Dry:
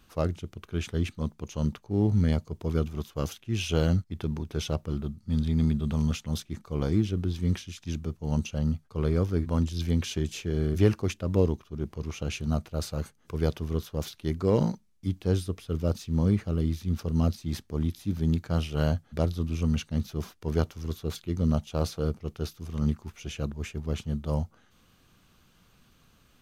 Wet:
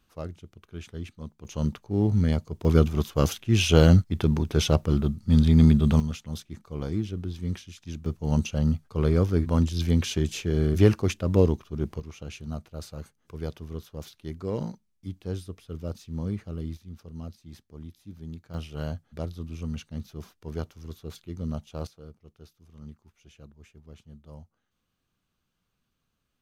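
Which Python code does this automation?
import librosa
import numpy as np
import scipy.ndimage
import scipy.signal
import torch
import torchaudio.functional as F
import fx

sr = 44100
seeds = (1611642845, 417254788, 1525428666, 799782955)

y = fx.gain(x, sr, db=fx.steps((0.0, -8.5), (1.45, 1.0), (2.65, 8.0), (6.0, -4.0), (8.06, 3.5), (12.0, -7.0), (16.77, -14.0), (18.54, -7.0), (21.87, -17.5)))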